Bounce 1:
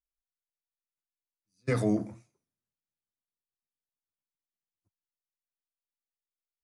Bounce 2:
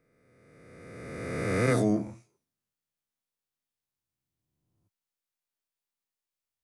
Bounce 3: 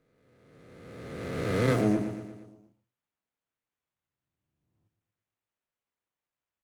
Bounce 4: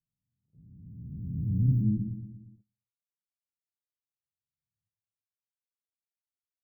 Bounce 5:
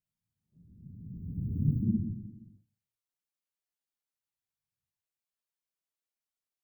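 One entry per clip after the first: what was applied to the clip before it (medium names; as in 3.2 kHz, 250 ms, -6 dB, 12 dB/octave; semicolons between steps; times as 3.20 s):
reverse spectral sustain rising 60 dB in 2.06 s
on a send: feedback delay 117 ms, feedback 56%, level -10 dB; on the sum: sliding maximum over 9 samples
inverse Chebyshev band-stop 620–7700 Hz, stop band 60 dB; tilt shelf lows +6 dB, about 630 Hz; gate -55 dBFS, range -23 dB
phase randomisation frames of 50 ms; peaking EQ 110 Hz -4 dB 2.3 oct; on a send at -14 dB: reverberation RT60 0.30 s, pre-delay 5 ms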